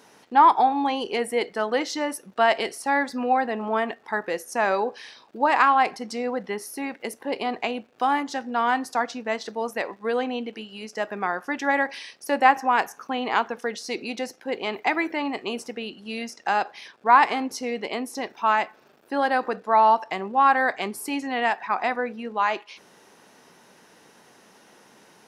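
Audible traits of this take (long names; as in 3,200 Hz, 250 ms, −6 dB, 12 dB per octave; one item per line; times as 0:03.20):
background noise floor −55 dBFS
spectral slope −1.0 dB per octave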